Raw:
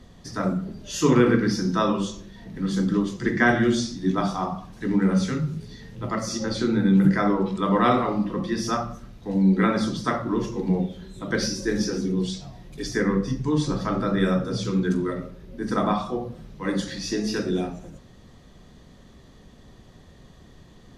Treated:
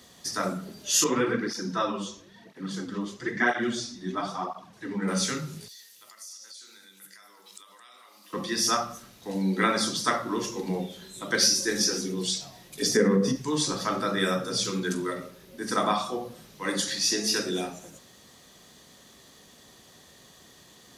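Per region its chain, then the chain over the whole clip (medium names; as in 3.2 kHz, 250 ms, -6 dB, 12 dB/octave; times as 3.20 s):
1.04–5.08 s: low-pass 2.1 kHz 6 dB/octave + cancelling through-zero flanger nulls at 1 Hz, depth 7.9 ms
5.68–8.33 s: differentiator + compression 12:1, threshold -50 dBFS + delay 218 ms -15 dB
12.82–13.36 s: compression, threshold -23 dBFS + small resonant body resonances 210/440 Hz, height 15 dB, ringing for 30 ms
whole clip: high-pass 45 Hz; RIAA curve recording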